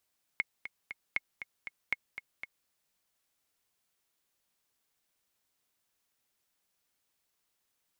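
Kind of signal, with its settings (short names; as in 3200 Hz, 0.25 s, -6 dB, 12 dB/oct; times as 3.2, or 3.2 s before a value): metronome 236 bpm, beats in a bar 3, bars 3, 2170 Hz, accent 11 dB -16 dBFS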